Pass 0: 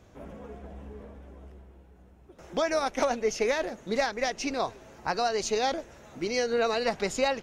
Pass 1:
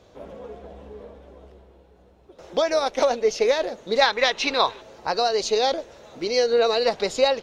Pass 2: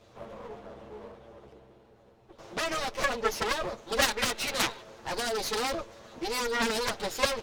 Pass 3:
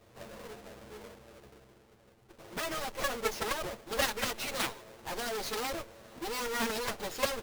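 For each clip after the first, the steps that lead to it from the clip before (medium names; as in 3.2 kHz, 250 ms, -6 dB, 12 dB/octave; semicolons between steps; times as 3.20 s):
time-frequency box 4.01–4.81 s, 800–4200 Hz +9 dB; graphic EQ 500/1000/4000 Hz +10/+4/+12 dB; trim -2.5 dB
comb filter that takes the minimum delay 8.9 ms; Chebyshev shaper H 7 -8 dB, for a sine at -6 dBFS; trim -7 dB
square wave that keeps the level; trim -7.5 dB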